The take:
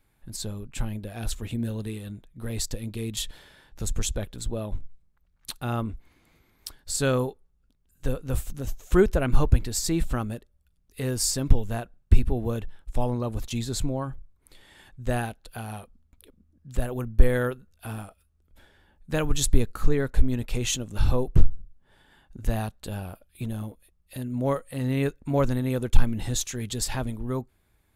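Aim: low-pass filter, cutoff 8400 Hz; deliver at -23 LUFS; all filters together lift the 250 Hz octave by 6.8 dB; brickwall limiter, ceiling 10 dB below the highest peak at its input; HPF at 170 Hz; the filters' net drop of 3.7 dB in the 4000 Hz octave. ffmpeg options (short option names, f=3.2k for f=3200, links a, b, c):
-af "highpass=170,lowpass=8.4k,equalizer=f=250:t=o:g=9,equalizer=f=4k:t=o:g=-4.5,volume=5.5dB,alimiter=limit=-9.5dB:level=0:latency=1"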